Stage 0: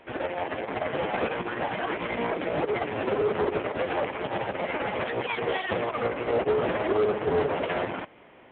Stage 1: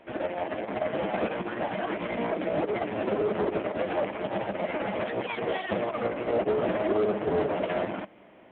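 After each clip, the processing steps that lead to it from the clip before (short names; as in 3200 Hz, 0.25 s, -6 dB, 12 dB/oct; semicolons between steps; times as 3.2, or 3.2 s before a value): thirty-one-band EQ 200 Hz +10 dB, 315 Hz +6 dB, 630 Hz +7 dB; gain -4 dB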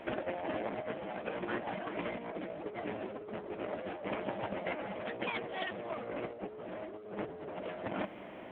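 limiter -25 dBFS, peak gain reduction 8 dB; negative-ratio compressor -38 dBFS, ratio -0.5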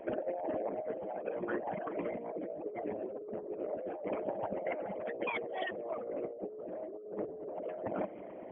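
formant sharpening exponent 2; gain +1 dB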